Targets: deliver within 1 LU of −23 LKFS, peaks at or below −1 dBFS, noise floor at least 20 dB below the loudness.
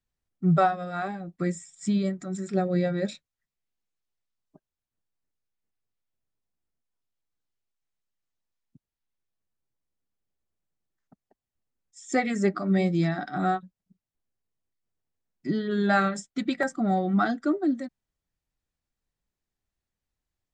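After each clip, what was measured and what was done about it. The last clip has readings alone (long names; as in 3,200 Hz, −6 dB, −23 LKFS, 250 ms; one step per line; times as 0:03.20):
number of dropouts 1; longest dropout 1.9 ms; integrated loudness −27.0 LKFS; sample peak −10.5 dBFS; target loudness −23.0 LKFS
→ repair the gap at 0:16.63, 1.9 ms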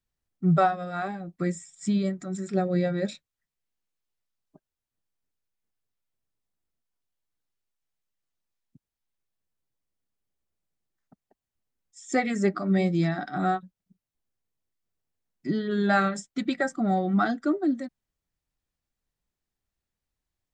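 number of dropouts 0; integrated loudness −27.0 LKFS; sample peak −10.5 dBFS; target loudness −23.0 LKFS
→ level +4 dB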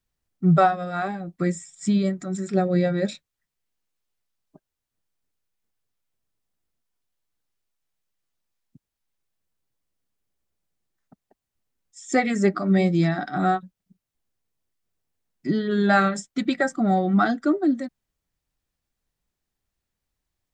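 integrated loudness −23.0 LKFS; sample peak −6.5 dBFS; background noise floor −85 dBFS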